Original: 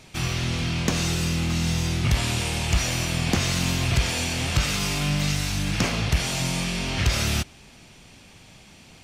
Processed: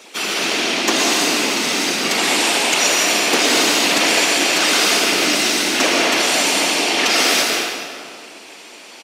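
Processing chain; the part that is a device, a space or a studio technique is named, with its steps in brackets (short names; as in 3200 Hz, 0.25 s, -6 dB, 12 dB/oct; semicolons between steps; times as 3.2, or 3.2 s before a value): comb 7.3 ms; whispering ghost (whisperiser; HPF 340 Hz 24 dB/oct; reverb RT60 2.2 s, pre-delay 0.108 s, DRR -1.5 dB); gain +7.5 dB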